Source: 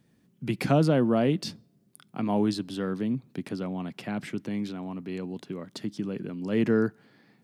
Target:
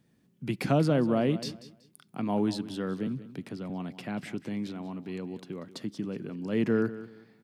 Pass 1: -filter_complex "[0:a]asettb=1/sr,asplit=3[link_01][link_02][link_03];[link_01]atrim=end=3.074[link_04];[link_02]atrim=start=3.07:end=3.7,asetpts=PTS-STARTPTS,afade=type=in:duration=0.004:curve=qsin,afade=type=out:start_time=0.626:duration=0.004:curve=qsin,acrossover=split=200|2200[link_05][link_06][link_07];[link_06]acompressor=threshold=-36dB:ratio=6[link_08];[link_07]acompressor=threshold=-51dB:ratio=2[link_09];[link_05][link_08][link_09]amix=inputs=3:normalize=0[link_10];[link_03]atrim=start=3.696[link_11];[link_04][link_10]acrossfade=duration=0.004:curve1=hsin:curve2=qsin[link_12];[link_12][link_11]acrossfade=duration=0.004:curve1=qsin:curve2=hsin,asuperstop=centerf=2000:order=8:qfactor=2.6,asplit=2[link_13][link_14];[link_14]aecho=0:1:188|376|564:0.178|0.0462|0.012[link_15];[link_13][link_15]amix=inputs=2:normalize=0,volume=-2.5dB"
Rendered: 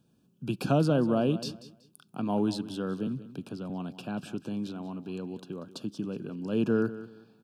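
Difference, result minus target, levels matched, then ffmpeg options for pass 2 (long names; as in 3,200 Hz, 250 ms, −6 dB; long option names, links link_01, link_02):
2,000 Hz band −2.5 dB
-filter_complex "[0:a]asettb=1/sr,asplit=3[link_01][link_02][link_03];[link_01]atrim=end=3.074[link_04];[link_02]atrim=start=3.07:end=3.7,asetpts=PTS-STARTPTS,afade=type=in:duration=0.004:curve=qsin,afade=type=out:start_time=0.626:duration=0.004:curve=qsin,acrossover=split=200|2200[link_05][link_06][link_07];[link_06]acompressor=threshold=-36dB:ratio=6[link_08];[link_07]acompressor=threshold=-51dB:ratio=2[link_09];[link_05][link_08][link_09]amix=inputs=3:normalize=0[link_10];[link_03]atrim=start=3.696[link_11];[link_04][link_10]acrossfade=duration=0.004:curve1=hsin:curve2=qsin[link_12];[link_12][link_11]acrossfade=duration=0.004:curve1=qsin:curve2=hsin,asplit=2[link_13][link_14];[link_14]aecho=0:1:188|376|564:0.178|0.0462|0.012[link_15];[link_13][link_15]amix=inputs=2:normalize=0,volume=-2.5dB"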